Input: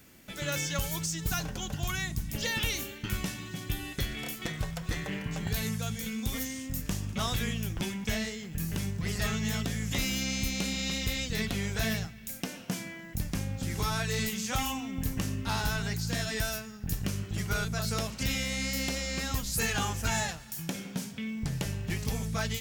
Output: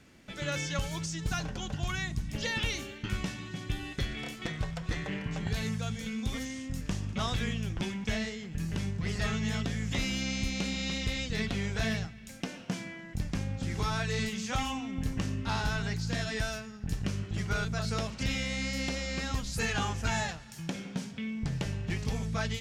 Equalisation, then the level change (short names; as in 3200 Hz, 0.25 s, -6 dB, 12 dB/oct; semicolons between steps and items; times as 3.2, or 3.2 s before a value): air absorption 75 m; 0.0 dB